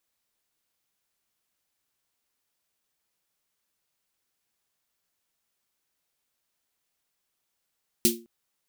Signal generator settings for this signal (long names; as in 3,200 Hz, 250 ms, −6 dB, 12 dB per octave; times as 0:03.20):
synth snare length 0.21 s, tones 230 Hz, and 350 Hz, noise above 2,700 Hz, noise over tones 4 dB, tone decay 0.35 s, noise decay 0.20 s